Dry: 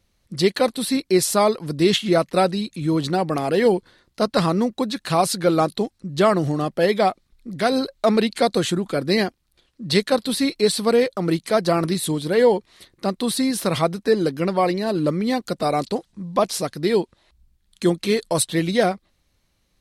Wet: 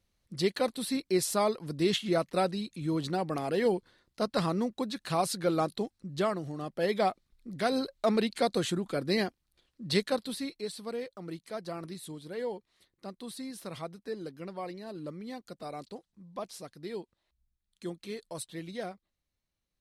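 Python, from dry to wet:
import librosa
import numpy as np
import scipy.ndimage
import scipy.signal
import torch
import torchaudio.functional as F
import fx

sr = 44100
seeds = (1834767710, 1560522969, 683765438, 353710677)

y = fx.gain(x, sr, db=fx.line((6.14, -10.0), (6.45, -17.0), (6.97, -9.0), (10.03, -9.0), (10.69, -19.5)))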